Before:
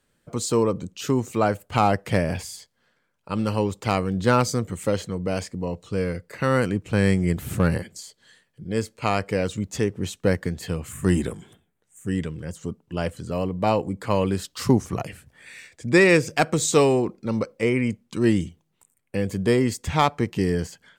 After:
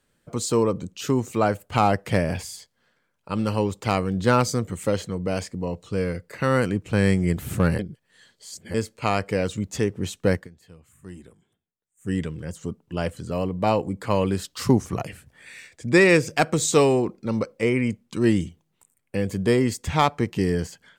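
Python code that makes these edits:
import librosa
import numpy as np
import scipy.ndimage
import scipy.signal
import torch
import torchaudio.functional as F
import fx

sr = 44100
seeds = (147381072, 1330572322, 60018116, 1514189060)

y = fx.edit(x, sr, fx.reverse_span(start_s=7.79, length_s=0.95),
    fx.fade_down_up(start_s=10.35, length_s=1.75, db=-20.5, fade_s=0.13), tone=tone)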